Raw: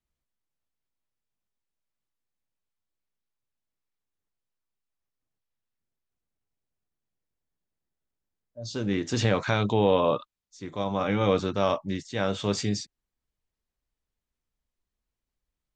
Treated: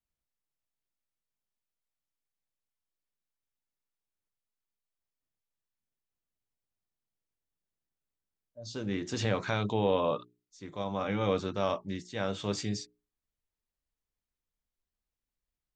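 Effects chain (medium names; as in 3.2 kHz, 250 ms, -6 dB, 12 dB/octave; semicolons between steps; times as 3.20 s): hum notches 60/120/180/240/300/360/420 Hz; trim -5.5 dB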